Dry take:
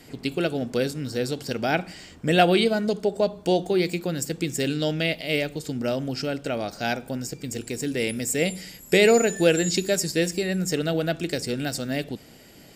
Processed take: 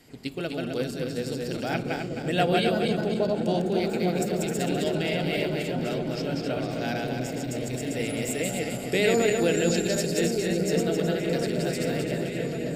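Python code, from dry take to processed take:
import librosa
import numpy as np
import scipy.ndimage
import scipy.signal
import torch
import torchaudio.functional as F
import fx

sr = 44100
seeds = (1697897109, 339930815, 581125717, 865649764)

y = fx.reverse_delay_fb(x, sr, ms=131, feedback_pct=62, wet_db=-2)
y = fx.echo_opening(y, sr, ms=554, hz=200, octaves=1, feedback_pct=70, wet_db=0)
y = y * librosa.db_to_amplitude(-7.0)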